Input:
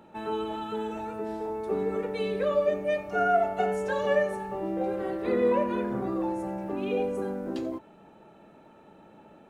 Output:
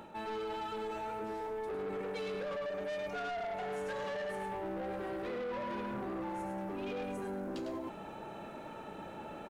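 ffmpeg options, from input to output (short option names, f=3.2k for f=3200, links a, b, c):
-filter_complex "[0:a]equalizer=f=220:w=0.46:g=-5,asplit=2[a][b];[b]aecho=0:1:103:0.473[c];[a][c]amix=inputs=2:normalize=0,alimiter=limit=-23dB:level=0:latency=1:release=120,asoftclip=type=tanh:threshold=-33.5dB,areverse,acompressor=threshold=-50dB:ratio=4,areverse,volume=10dB"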